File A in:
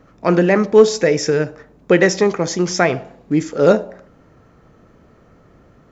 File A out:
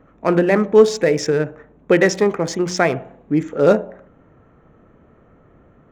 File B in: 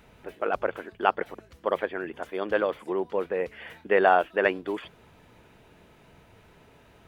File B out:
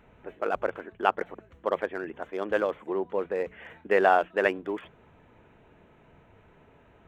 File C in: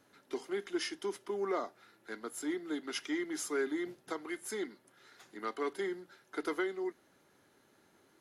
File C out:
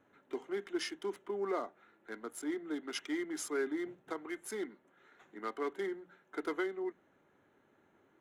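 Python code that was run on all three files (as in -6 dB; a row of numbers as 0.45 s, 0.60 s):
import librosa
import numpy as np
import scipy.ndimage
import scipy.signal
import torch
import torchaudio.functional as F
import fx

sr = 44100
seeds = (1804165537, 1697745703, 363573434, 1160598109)

y = fx.wiener(x, sr, points=9)
y = fx.hum_notches(y, sr, base_hz=60, count=3)
y = y * 10.0 ** (-1.0 / 20.0)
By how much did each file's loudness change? -1.5 LU, -1.0 LU, -1.5 LU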